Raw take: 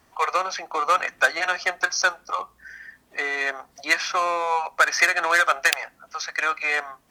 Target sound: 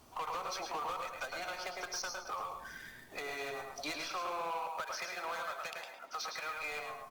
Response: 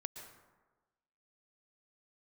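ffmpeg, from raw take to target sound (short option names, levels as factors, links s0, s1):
-filter_complex "[0:a]aeval=exprs='if(lt(val(0),0),0.708*val(0),val(0))':c=same,acompressor=threshold=0.0224:ratio=16,asettb=1/sr,asplit=3[s0][s1][s2];[s0]atrim=end=4.024[s3];[s1]atrim=start=4.02:end=6.55,asetpts=PTS-STARTPTS,afade=t=in:d=0.004:c=qsin,afade=t=out:st=2.526:d=0.004:c=qsin,acrossover=split=260 6600:gain=0.0631 1 0.126[s4][s5][s6];[s4][s5][s6]amix=inputs=3:normalize=0[s7];[s2]atrim=start=6.546[s8];[s3][s7]acrossfade=d=0.004:c1=hsin:c2=qsin[s9];[s9][s8]acrossfade=d=0.004:c1=qsin:c2=hsin,asplit=2[s10][s11];[s11]adelay=107,lowpass=f=3400:p=1,volume=0.596,asplit=2[s12][s13];[s13]adelay=107,lowpass=f=3400:p=1,volume=0.27,asplit=2[s14][s15];[s15]adelay=107,lowpass=f=3400:p=1,volume=0.27,asplit=2[s16][s17];[s17]adelay=107,lowpass=f=3400:p=1,volume=0.27[s18];[s10][s12][s14][s16][s18]amix=inputs=5:normalize=0[s19];[1:a]atrim=start_sample=2205,afade=t=out:st=0.2:d=0.01,atrim=end_sample=9261[s20];[s19][s20]afir=irnorm=-1:irlink=0,acrusher=bits=5:mode=log:mix=0:aa=0.000001,equalizer=f=1800:w=3.6:g=-13.5,asoftclip=type=tanh:threshold=0.0126,volume=1.88" -ar 48000 -c:a libopus -b:a 48k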